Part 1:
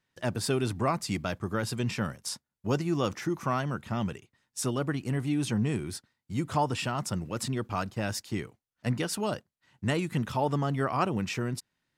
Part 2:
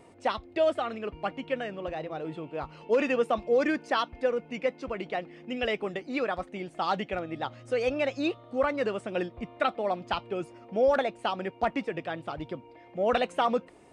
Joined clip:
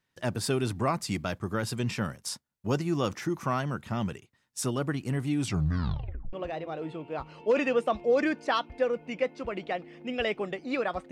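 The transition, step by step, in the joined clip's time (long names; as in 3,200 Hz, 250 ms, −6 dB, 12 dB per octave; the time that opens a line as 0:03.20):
part 1
0:05.37: tape stop 0.96 s
0:06.33: continue with part 2 from 0:01.76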